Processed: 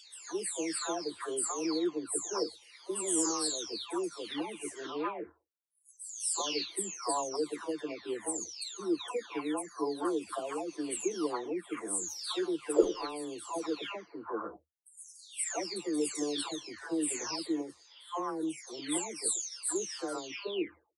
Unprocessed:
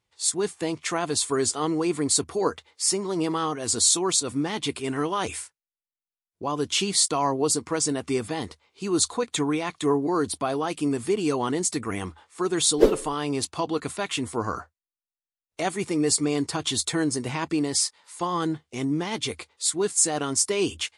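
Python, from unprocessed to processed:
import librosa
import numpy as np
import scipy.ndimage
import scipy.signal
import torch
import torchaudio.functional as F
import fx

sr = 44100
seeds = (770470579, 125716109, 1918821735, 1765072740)

y = fx.spec_delay(x, sr, highs='early', ms=723)
y = fx.low_shelf_res(y, sr, hz=210.0, db=-13.5, q=1.5)
y = y * 10.0 ** (-8.5 / 20.0)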